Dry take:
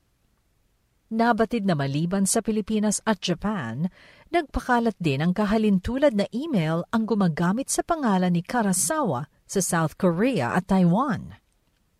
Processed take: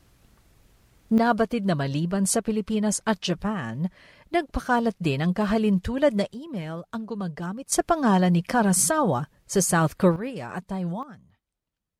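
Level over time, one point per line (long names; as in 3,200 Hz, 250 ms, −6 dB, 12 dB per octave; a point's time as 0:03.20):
+9 dB
from 0:01.18 −1 dB
from 0:06.34 −9 dB
from 0:07.72 +2 dB
from 0:10.16 −10 dB
from 0:11.03 −19 dB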